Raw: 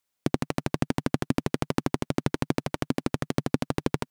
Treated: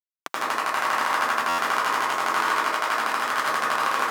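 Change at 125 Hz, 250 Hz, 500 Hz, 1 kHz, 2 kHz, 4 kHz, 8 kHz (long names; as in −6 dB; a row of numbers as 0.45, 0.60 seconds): below −20 dB, −13.0 dB, −0.5 dB, +15.0 dB, +15.0 dB, +9.0 dB, +8.0 dB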